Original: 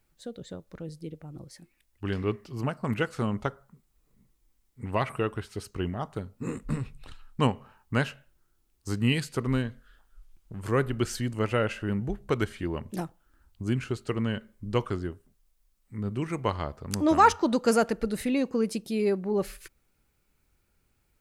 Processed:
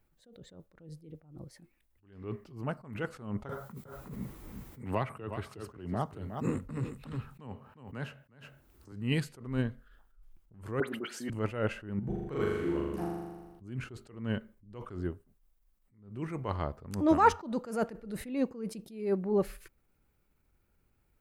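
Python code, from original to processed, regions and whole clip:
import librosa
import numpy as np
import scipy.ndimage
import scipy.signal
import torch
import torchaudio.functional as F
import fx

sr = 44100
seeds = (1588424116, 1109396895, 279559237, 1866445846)

y = fx.chain(x, sr, fx.highpass(hz=58.0, slope=12),
    fx.echo_single(ms=362, db=-11.0),
    fx.band_squash(depth_pct=100), at=(3.49, 8.92))
y = fx.chain(y, sr, fx.highpass(hz=220.0, slope=24),
    fx.dispersion(late='highs', ms=77.0, hz=2300.0),
    fx.band_squash(depth_pct=70), at=(10.8, 11.3))
y = fx.chain(y, sr, fx.comb_fb(f0_hz=69.0, decay_s=0.25, harmonics='all', damping=0.0, mix_pct=80),
    fx.room_flutter(wall_m=7.0, rt60_s=1.4), at=(11.99, 13.62))
y = fx.peak_eq(y, sr, hz=6200.0, db=-8.5, octaves=2.8)
y = fx.attack_slew(y, sr, db_per_s=110.0)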